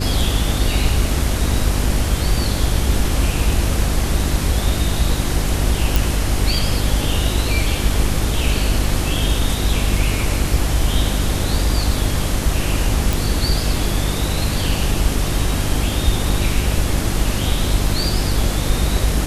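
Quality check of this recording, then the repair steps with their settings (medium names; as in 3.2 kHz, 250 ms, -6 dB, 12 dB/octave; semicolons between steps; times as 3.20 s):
hum 50 Hz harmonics 7 -22 dBFS
5.96 s: pop
13.13 s: pop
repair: de-click; de-hum 50 Hz, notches 7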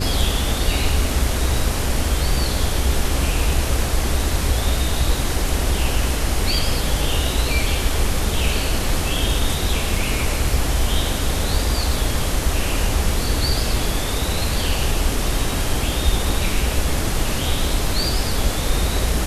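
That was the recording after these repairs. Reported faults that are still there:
nothing left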